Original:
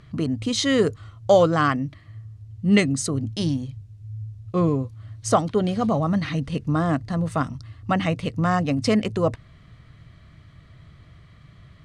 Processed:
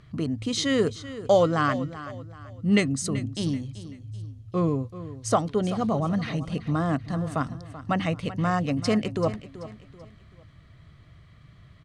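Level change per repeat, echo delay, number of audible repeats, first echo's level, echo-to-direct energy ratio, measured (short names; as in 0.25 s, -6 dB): -9.0 dB, 0.384 s, 3, -14.5 dB, -14.0 dB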